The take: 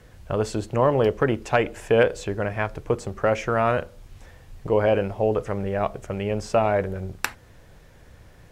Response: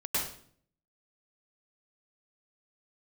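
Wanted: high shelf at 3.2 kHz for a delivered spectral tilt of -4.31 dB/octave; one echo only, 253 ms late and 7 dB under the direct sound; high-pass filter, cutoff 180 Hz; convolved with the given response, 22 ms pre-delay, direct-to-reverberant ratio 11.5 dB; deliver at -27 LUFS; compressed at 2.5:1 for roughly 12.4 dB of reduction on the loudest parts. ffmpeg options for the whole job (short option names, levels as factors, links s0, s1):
-filter_complex "[0:a]highpass=180,highshelf=f=3200:g=6,acompressor=threshold=0.02:ratio=2.5,aecho=1:1:253:0.447,asplit=2[s0][s1];[1:a]atrim=start_sample=2205,adelay=22[s2];[s1][s2]afir=irnorm=-1:irlink=0,volume=0.119[s3];[s0][s3]amix=inputs=2:normalize=0,volume=2.24"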